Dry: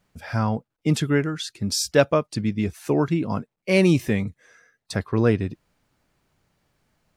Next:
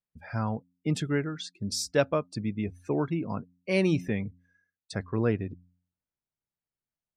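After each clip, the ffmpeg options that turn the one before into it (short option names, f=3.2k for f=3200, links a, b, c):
-af "afftdn=nr=23:nf=-41,bandreject=f=89.05:t=h:w=4,bandreject=f=178.1:t=h:w=4,bandreject=f=267.15:t=h:w=4,volume=-7dB"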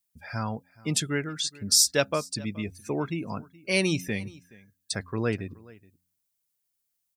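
-af "aecho=1:1:423:0.075,crystalizer=i=6:c=0,volume=-2dB"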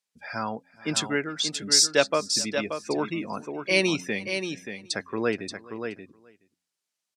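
-filter_complex "[0:a]highpass=260,lowpass=6.5k,asplit=2[a][b];[b]aecho=0:1:580:0.422[c];[a][c]amix=inputs=2:normalize=0,volume=3.5dB"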